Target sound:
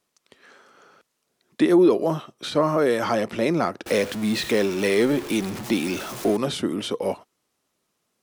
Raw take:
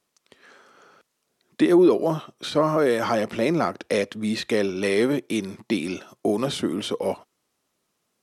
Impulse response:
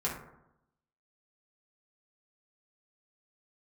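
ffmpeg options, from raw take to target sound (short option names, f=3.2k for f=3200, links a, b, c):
-filter_complex "[0:a]asettb=1/sr,asplit=3[a][b][c];[a]atrim=end=3.864[d];[b]atrim=start=3.86:end=6.37,asetpts=PTS-STARTPTS,afade=t=in:d=0.004:c=qsin,afade=t=out:st=2.506:d=0.004:c=qsin,aeval=exprs='val(0)+0.5*0.0355*sgn(val(0))':c=same[e];[c]atrim=start=6.366[f];[d][e]acrossfade=d=0.004:c1=hsin:c2=qsin[g];[g][f]acrossfade=d=0.004:c1=qsin:c2=hsin"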